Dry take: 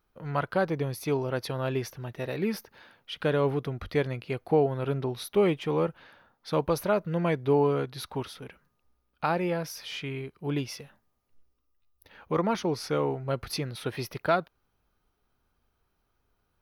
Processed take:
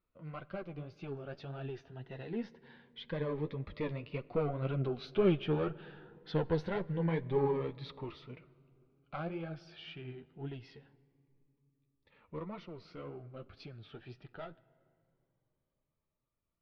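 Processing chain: one diode to ground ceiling -22.5 dBFS; Doppler pass-by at 5.72, 14 m/s, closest 21 m; LPF 3700 Hz 24 dB/oct; in parallel at -2.5 dB: compressor, threshold -55 dBFS, peak gain reduction 29 dB; on the sum: flange 1.9 Hz, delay 4.8 ms, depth 8.8 ms, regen +33%; on a send at -20 dB: reverb RT60 2.9 s, pre-delay 5 ms; on the sum: cascading phaser rising 0.24 Hz; gain +2 dB

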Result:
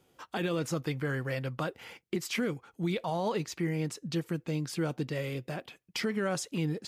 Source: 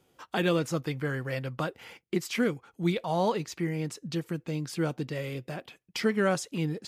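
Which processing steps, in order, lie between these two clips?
limiter -22 dBFS, peak gain reduction 8.5 dB

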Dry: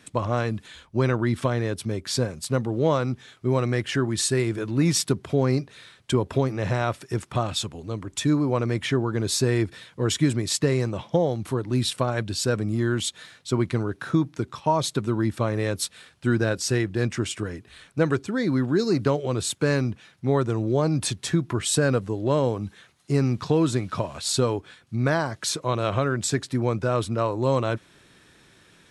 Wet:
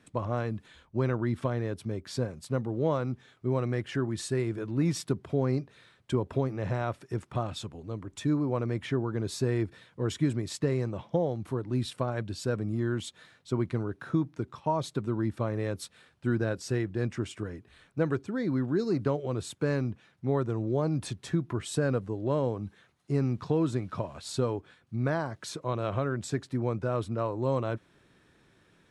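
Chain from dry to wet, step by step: high shelf 2200 Hz -9.5 dB; gain -5.5 dB

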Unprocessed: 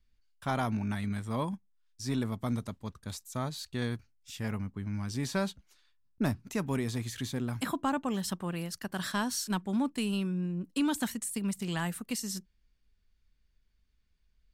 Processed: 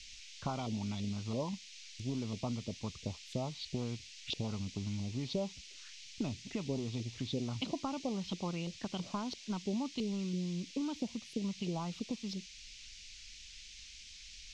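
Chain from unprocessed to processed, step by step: compressor 5:1, threshold -47 dBFS, peak gain reduction 19 dB; LFO low-pass saw up 3 Hz 390–4200 Hz; envelope phaser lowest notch 580 Hz, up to 1700 Hz; band noise 2200–6500 Hz -63 dBFS; gain +10 dB

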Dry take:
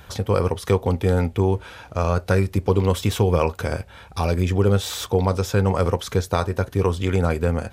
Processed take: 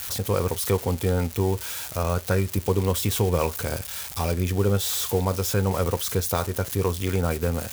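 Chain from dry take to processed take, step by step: switching spikes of -18.5 dBFS; gain -4 dB

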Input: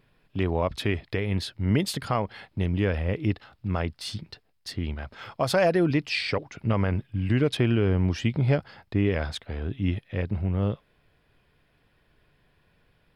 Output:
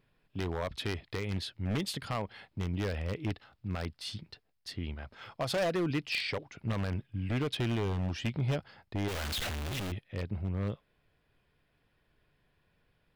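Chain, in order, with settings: 9.08–9.92 infinite clipping; dynamic EQ 3100 Hz, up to +4 dB, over -45 dBFS, Q 1.2; wavefolder -17 dBFS; gain -7.5 dB

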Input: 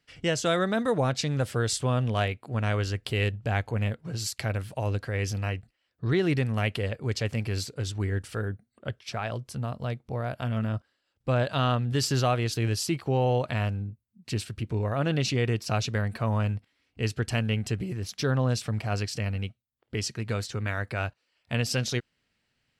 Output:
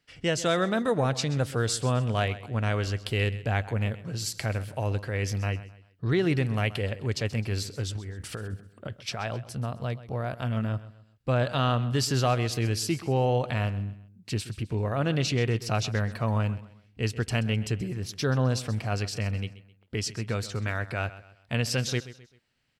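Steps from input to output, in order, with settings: 7.95–9.2 negative-ratio compressor -35 dBFS, ratio -1; on a send: feedback echo 0.13 s, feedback 37%, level -16 dB

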